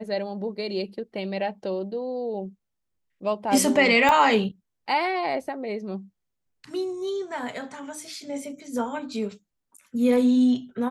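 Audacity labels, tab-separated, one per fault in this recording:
4.090000	4.090000	click −9 dBFS

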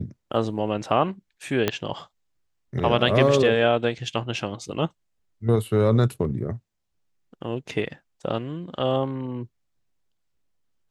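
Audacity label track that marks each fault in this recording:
1.680000	1.680000	click −7 dBFS

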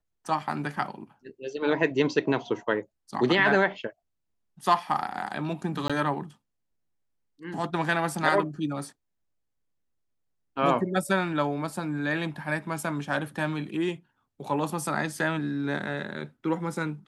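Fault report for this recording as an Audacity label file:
5.880000	5.900000	drop-out 16 ms

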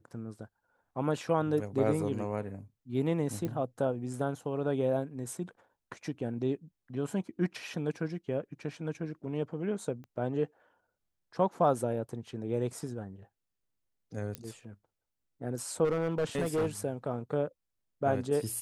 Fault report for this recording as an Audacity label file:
3.450000	3.450000	click −22 dBFS
10.040000	10.040000	click −37 dBFS
14.350000	14.350000	click −21 dBFS
15.840000	16.670000	clipping −25.5 dBFS

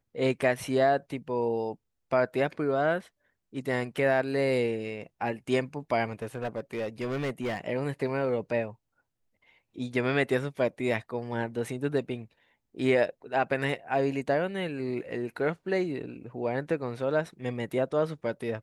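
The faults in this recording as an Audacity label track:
6.220000	7.590000	clipping −27 dBFS

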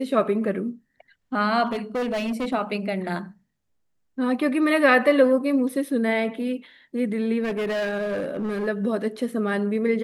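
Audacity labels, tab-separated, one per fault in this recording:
1.660000	2.540000	clipping −22.5 dBFS
7.430000	8.680000	clipping −23 dBFS

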